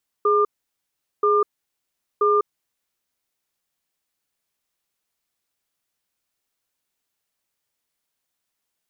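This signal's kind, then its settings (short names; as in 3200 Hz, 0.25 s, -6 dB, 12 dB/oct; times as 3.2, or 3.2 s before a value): cadence 417 Hz, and 1200 Hz, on 0.20 s, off 0.78 s, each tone -17.5 dBFS 2.30 s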